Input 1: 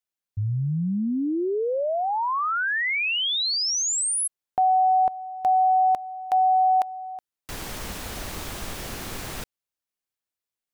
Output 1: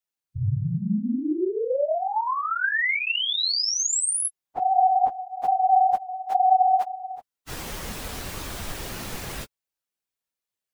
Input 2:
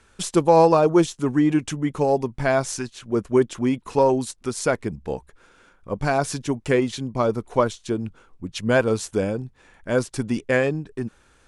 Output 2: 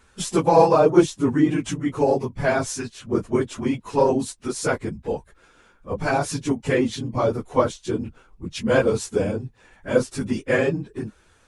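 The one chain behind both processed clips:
random phases in long frames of 50 ms

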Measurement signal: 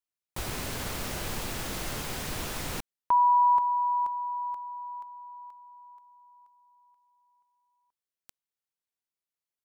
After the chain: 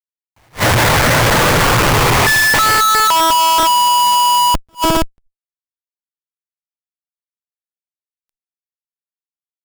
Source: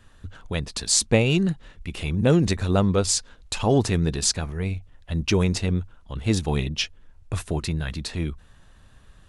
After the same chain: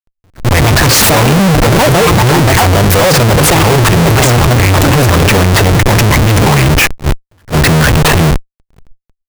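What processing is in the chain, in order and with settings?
rippled gain that drifts along the octave scale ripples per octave 0.69, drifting −0.47 Hz, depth 8 dB
on a send: repeating echo 514 ms, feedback 47%, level −22 dB
on the sum: delay with pitch and tempo change per echo 263 ms, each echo +5 semitones, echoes 2
high-shelf EQ 2,100 Hz +4 dB
in parallel at +1.5 dB: compressor whose output falls as the input rises −27 dBFS, ratio −1
on the sum: reverb reduction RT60 0.64 s
octave-band graphic EQ 125/250/500/1,000/2,000/4,000/8,000 Hz +11/−6/+5/+7/+10/−10/−7 dB
feedback delay network reverb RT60 0.36 s, low-frequency decay 0.9×, high-frequency decay 0.9×, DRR 12.5 dB
comparator with hysteresis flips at −24.5 dBFS
level that may rise only so fast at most 360 dB per second
level +8 dB

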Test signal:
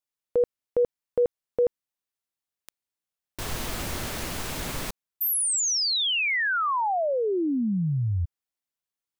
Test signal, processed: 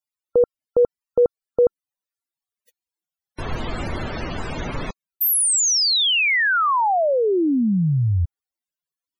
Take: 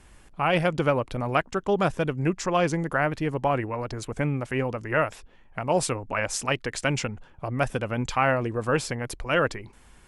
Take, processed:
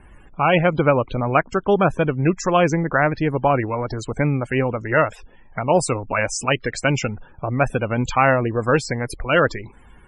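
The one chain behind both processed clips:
spectral peaks only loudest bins 64
level +6.5 dB

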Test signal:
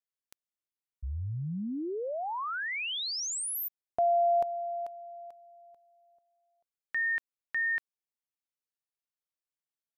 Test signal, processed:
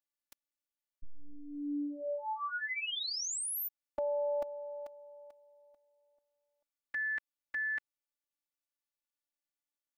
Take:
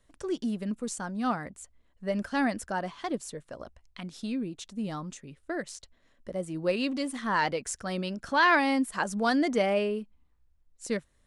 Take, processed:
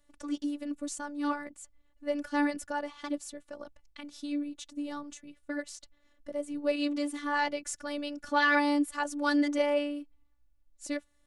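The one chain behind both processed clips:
phases set to zero 291 Hz

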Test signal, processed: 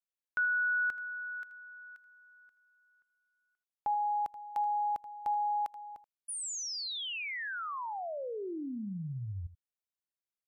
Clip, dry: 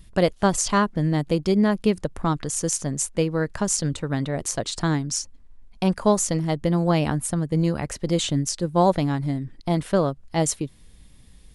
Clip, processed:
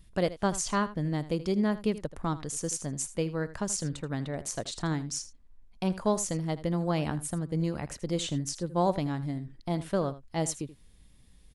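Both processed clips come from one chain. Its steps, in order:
single-tap delay 80 ms −15.5 dB
level −8 dB

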